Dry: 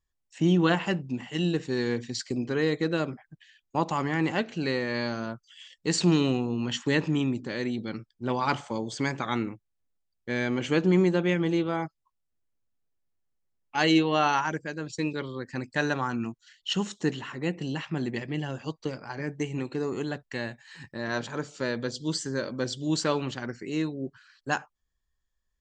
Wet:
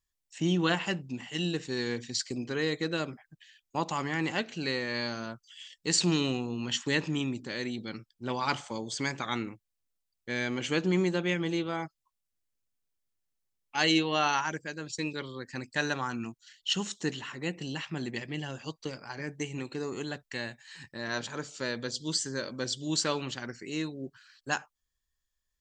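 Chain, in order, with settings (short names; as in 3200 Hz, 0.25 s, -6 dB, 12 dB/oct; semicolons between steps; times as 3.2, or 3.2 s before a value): high shelf 2100 Hz +9.5 dB; gain -5.5 dB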